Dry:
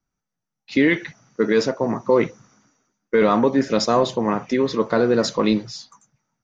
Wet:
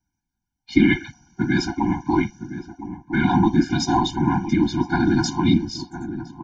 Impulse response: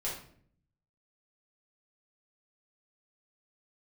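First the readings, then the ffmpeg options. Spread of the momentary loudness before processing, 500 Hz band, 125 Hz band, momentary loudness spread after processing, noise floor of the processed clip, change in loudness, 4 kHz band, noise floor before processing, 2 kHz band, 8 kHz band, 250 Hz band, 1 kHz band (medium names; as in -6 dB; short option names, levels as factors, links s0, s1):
7 LU, -11.0 dB, +7.5 dB, 15 LU, -82 dBFS, -1.0 dB, -0.5 dB, -83 dBFS, 0.0 dB, no reading, +2.5 dB, +0.5 dB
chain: -filter_complex "[0:a]afftfilt=real='hypot(re,im)*cos(2*PI*random(0))':imag='hypot(re,im)*sin(2*PI*random(1))':win_size=512:overlap=0.75,asplit=2[s0][s1];[s1]adelay=1013,lowpass=f=890:p=1,volume=0.282,asplit=2[s2][s3];[s3]adelay=1013,lowpass=f=890:p=1,volume=0.3,asplit=2[s4][s5];[s5]adelay=1013,lowpass=f=890:p=1,volume=0.3[s6];[s0][s2][s4][s6]amix=inputs=4:normalize=0,afftfilt=real='re*eq(mod(floor(b*sr/1024/350),2),0)':imag='im*eq(mod(floor(b*sr/1024/350),2),0)':win_size=1024:overlap=0.75,volume=2.82"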